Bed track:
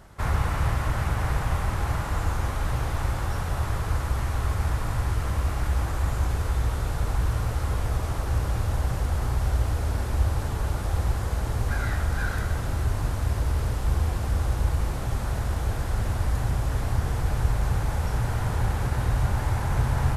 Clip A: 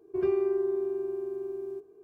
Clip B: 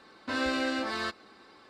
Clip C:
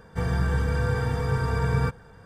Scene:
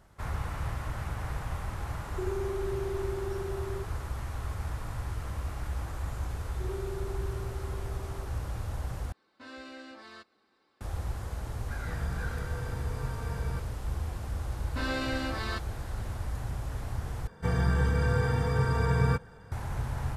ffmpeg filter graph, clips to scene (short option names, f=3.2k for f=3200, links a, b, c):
-filter_complex "[1:a]asplit=2[a][b];[2:a]asplit=2[c][d];[3:a]asplit=2[e][f];[0:a]volume=-9.5dB[g];[a]acompressor=threshold=-29dB:ratio=6:attack=3.2:release=140:knee=1:detection=peak[h];[g]asplit=3[i][j][k];[i]atrim=end=9.124[l];[c]atrim=end=1.69,asetpts=PTS-STARTPTS,volume=-16dB[m];[j]atrim=start=10.806:end=17.274[n];[f]atrim=end=2.25,asetpts=PTS-STARTPTS,volume=-1.5dB[o];[k]atrim=start=19.516[p];[h]atrim=end=2.03,asetpts=PTS-STARTPTS,volume=-2dB,afade=t=in:d=0.004:c=hsin,afade=t=out:st=2.026:d=0.004:c=hsin,adelay=2040[q];[b]atrim=end=2.03,asetpts=PTS-STARTPTS,volume=-12.5dB,afade=t=in:d=0.004:c=hsin,afade=t=out:st=2.026:d=0.004:c=hsin,adelay=6460[r];[e]atrim=end=2.25,asetpts=PTS-STARTPTS,volume=-13.5dB,afade=t=in:d=0.004:c=hsin,afade=t=out:st=2.246:d=0.004:c=hsin,adelay=515970S[s];[d]atrim=end=1.69,asetpts=PTS-STARTPTS,volume=-3dB,afade=t=in:d=0.004:c=hsin,afade=t=out:st=1.686:d=0.004:c=hsin,adelay=14480[t];[l][m]acrossfade=d=0.004:c1=hsin:c2=hsin[u];[u][n]acrossfade=d=0.004:c1=hsin:c2=hsin[v];[v][o]acrossfade=d=0.004:c1=hsin:c2=hsin[w];[w][p]acrossfade=d=0.004:c1=hsin:c2=hsin[x];[x][q][r][s][t]amix=inputs=5:normalize=0"